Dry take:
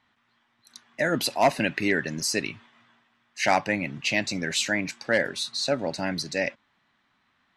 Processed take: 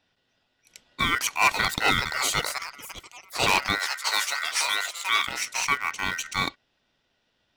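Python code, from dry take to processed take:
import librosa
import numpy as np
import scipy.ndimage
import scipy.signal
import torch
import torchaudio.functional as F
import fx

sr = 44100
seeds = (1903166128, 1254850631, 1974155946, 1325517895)

p1 = fx.echo_pitch(x, sr, ms=789, semitones=5, count=3, db_per_echo=-6.0)
p2 = p1 * np.sin(2.0 * np.pi * 1700.0 * np.arange(len(p1)) / sr)
p3 = np.where(np.abs(p2) >= 10.0 ** (-28.0 / 20.0), p2, 0.0)
p4 = p2 + F.gain(torch.from_numpy(p3), -6.0).numpy()
p5 = fx.highpass(p4, sr, hz=810.0, slope=12, at=(3.79, 5.27))
y = 10.0 ** (-10.0 / 20.0) * (np.abs((p5 / 10.0 ** (-10.0 / 20.0) + 3.0) % 4.0 - 2.0) - 1.0)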